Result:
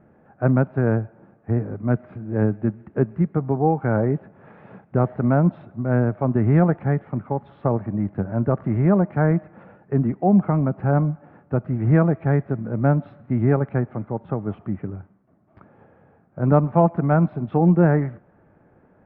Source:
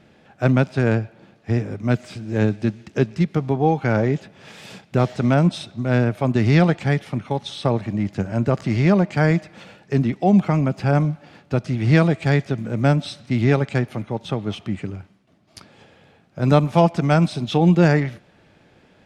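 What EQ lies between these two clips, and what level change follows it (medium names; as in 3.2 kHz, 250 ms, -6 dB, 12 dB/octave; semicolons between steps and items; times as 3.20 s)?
low-pass 1.5 kHz 24 dB/octave; distance through air 52 m; -1.0 dB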